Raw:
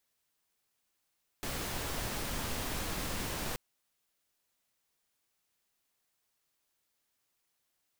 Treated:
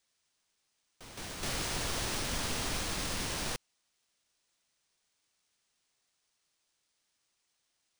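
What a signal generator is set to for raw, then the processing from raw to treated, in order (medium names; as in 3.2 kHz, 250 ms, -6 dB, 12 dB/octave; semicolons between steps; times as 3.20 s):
noise pink, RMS -36.5 dBFS 2.13 s
treble shelf 3.9 kHz +10.5 dB; ever faster or slower copies 102 ms, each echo +5 st, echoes 2, each echo -6 dB; careless resampling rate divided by 3×, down filtered, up hold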